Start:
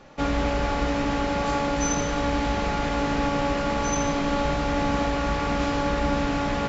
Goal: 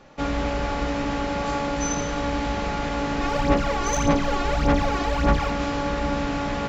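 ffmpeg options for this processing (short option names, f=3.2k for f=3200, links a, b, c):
-filter_complex "[0:a]asplit=3[a][b][c];[a]afade=t=out:st=3.2:d=0.02[d];[b]aphaser=in_gain=1:out_gain=1:delay=2.8:decay=0.64:speed=1.7:type=sinusoidal,afade=t=in:st=3.2:d=0.02,afade=t=out:st=5.49:d=0.02[e];[c]afade=t=in:st=5.49:d=0.02[f];[d][e][f]amix=inputs=3:normalize=0,volume=-1dB"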